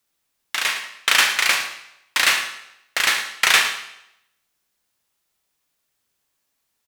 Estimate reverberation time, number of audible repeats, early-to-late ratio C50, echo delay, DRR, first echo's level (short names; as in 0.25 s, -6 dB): 0.80 s, 1, 7.5 dB, 0.11 s, 5.0 dB, -14.5 dB